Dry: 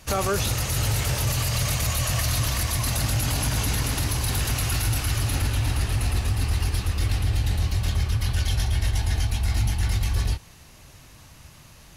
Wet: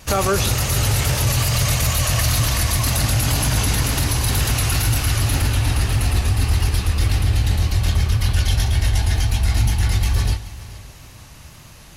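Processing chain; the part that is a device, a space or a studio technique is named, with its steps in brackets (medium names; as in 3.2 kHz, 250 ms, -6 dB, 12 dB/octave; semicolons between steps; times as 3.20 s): multi-head tape echo (multi-head delay 143 ms, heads first and third, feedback 44%, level -18.5 dB; wow and flutter 22 cents); trim +5.5 dB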